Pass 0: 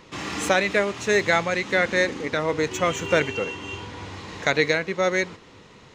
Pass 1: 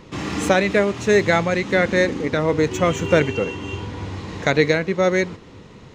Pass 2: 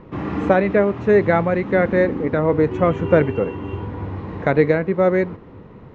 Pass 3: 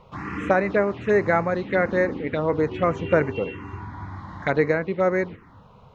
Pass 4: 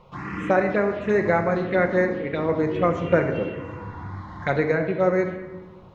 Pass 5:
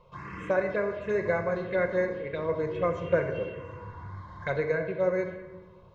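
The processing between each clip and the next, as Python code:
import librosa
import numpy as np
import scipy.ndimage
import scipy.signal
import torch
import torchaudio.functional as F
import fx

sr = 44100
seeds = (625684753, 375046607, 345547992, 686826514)

y1 = fx.low_shelf(x, sr, hz=480.0, db=10.0)
y2 = scipy.signal.sosfilt(scipy.signal.butter(2, 1400.0, 'lowpass', fs=sr, output='sos'), y1)
y2 = F.gain(torch.from_numpy(y2), 2.0).numpy()
y3 = fx.tilt_shelf(y2, sr, db=-7.0, hz=1100.0)
y3 = fx.env_phaser(y3, sr, low_hz=280.0, high_hz=3300.0, full_db=-16.5)
y4 = fx.room_shoebox(y3, sr, seeds[0], volume_m3=880.0, walls='mixed', distance_m=0.9)
y4 = F.gain(torch.from_numpy(y4), -1.5).numpy()
y5 = y4 + 0.6 * np.pad(y4, (int(1.9 * sr / 1000.0), 0))[:len(y4)]
y5 = F.gain(torch.from_numpy(y5), -8.5).numpy()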